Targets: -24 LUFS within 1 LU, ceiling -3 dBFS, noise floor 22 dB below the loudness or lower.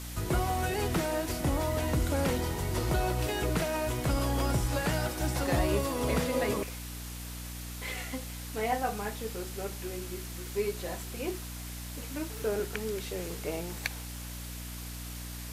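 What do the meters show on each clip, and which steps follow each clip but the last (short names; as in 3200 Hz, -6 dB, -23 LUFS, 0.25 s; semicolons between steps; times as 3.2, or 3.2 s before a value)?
hum 60 Hz; harmonics up to 300 Hz; hum level -39 dBFS; noise floor -41 dBFS; noise floor target -55 dBFS; loudness -32.5 LUFS; peak -13.0 dBFS; loudness target -24.0 LUFS
-> de-hum 60 Hz, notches 5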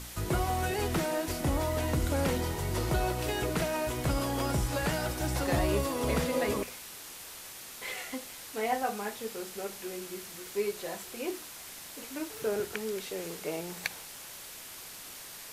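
hum none; noise floor -46 dBFS; noise floor target -55 dBFS
-> denoiser 9 dB, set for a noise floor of -46 dBFS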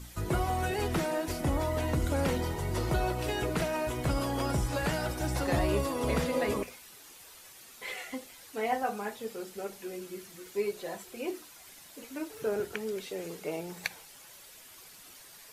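noise floor -53 dBFS; noise floor target -55 dBFS
-> denoiser 6 dB, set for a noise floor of -53 dBFS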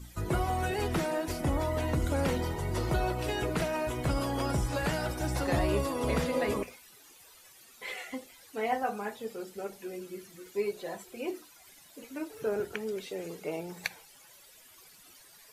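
noise floor -57 dBFS; loudness -33.0 LUFS; peak -13.0 dBFS; loudness target -24.0 LUFS
-> gain +9 dB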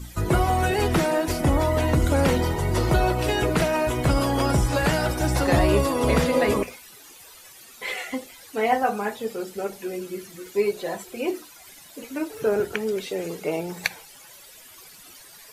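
loudness -24.0 LUFS; peak -4.0 dBFS; noise floor -48 dBFS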